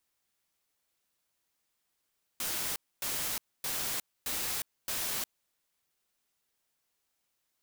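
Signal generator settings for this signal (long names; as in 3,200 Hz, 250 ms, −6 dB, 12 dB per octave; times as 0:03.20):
noise bursts white, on 0.36 s, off 0.26 s, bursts 5, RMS −34 dBFS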